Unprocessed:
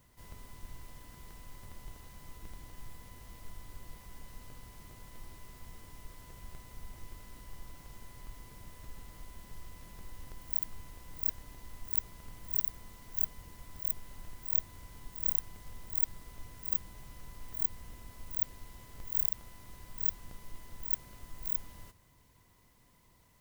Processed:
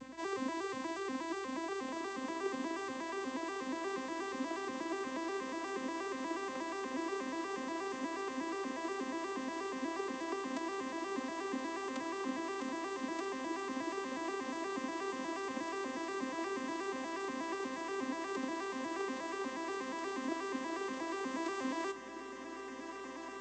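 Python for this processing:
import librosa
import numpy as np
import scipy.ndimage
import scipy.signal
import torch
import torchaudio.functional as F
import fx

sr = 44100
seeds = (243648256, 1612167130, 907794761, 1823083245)

p1 = fx.vocoder_arp(x, sr, chord='major triad', root=60, every_ms=120)
p2 = fx.rider(p1, sr, range_db=5, speed_s=2.0)
p3 = fx.add_hum(p2, sr, base_hz=60, snr_db=33)
p4 = p3 + fx.echo_diffused(p3, sr, ms=1938, feedback_pct=64, wet_db=-13, dry=0)
y = p4 * 10.0 ** (17.5 / 20.0)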